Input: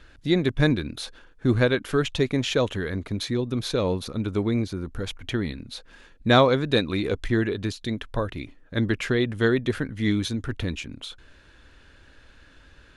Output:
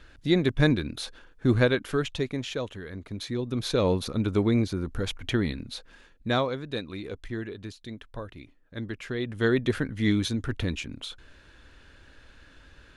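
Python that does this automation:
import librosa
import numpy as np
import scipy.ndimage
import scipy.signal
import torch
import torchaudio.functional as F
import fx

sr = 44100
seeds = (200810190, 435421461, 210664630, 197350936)

y = fx.gain(x, sr, db=fx.line((1.64, -1.0), (2.81, -11.0), (3.86, 1.0), (5.63, 1.0), (6.56, -11.0), (9.03, -11.0), (9.58, -0.5)))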